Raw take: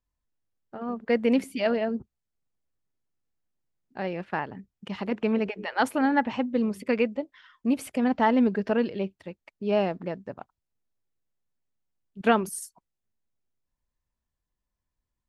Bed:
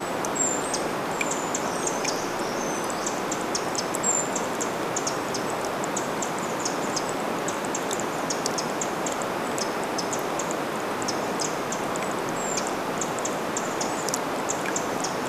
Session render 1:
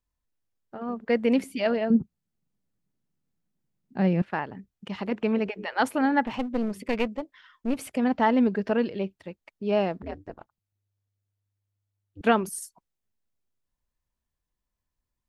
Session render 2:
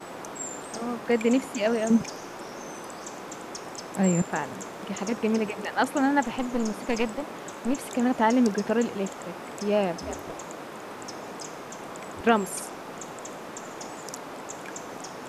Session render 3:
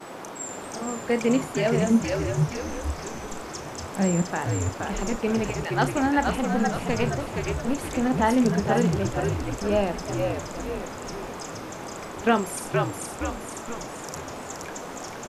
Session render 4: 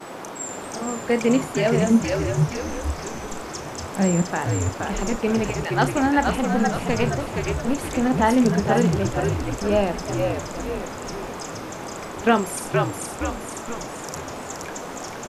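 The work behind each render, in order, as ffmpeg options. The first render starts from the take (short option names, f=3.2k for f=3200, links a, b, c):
-filter_complex "[0:a]asettb=1/sr,asplit=3[a][b][c];[a]atrim=end=1.904[d];[b]atrim=start=1.9:end=4.22,asetpts=PTS-STARTPTS,afade=t=in:d=0.004:c=qsin,afade=t=out:st=2.316:d=0.004:c=qsin,equalizer=f=180:w=1:g=14.5[e];[c]atrim=start=4.216[f];[d][e]acrossfade=d=0.004:c1=hsin:c2=qsin[g];[g][f]acrossfade=d=0.004:c1=qsin:c2=hsin,asettb=1/sr,asplit=3[h][i][j];[h]atrim=end=6.244[k];[i]atrim=start=6.24:end=7.9,asetpts=PTS-STARTPTS,afade=t=in:d=0.004:c=qsin,afade=t=out:st=1.656:d=0.004:c=qsin,aeval=exprs='clip(val(0),-1,0.0266)':c=same[l];[j]atrim=start=7.896[m];[k][l]acrossfade=d=0.004:c1=hsin:c2=qsin[n];[n][m]acrossfade=d=0.004:c1=qsin:c2=hsin,asettb=1/sr,asplit=3[o][p][q];[o]atrim=end=10.024[r];[p]atrim=start=10.02:end=12.21,asetpts=PTS-STARTPTS,afade=t=in:d=0.004:c=qsin,afade=t=out:st=2.186:d=0.004:c=qsin,aeval=exprs='val(0)*sin(2*PI*100*n/s)':c=same[s];[q]atrim=start=12.206[t];[r][s]acrossfade=d=0.004:c1=hsin:c2=qsin[u];[u][t]acrossfade=d=0.004:c1=qsin:c2=hsin"
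-filter_complex "[1:a]volume=-11dB[a];[0:a][a]amix=inputs=2:normalize=0"
-filter_complex "[0:a]asplit=2[a][b];[b]adelay=35,volume=-12dB[c];[a][c]amix=inputs=2:normalize=0,asplit=2[d][e];[e]asplit=6[f][g][h][i][j][k];[f]adelay=471,afreqshift=-78,volume=-3.5dB[l];[g]adelay=942,afreqshift=-156,volume=-9.7dB[m];[h]adelay=1413,afreqshift=-234,volume=-15.9dB[n];[i]adelay=1884,afreqshift=-312,volume=-22.1dB[o];[j]adelay=2355,afreqshift=-390,volume=-28.3dB[p];[k]adelay=2826,afreqshift=-468,volume=-34.5dB[q];[l][m][n][o][p][q]amix=inputs=6:normalize=0[r];[d][r]amix=inputs=2:normalize=0"
-af "volume=3dB"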